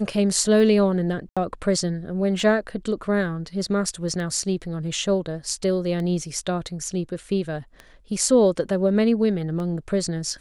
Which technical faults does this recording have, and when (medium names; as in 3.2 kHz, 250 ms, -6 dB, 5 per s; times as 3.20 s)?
tick 33 1/3 rpm
1.29–1.37 s: dropout 76 ms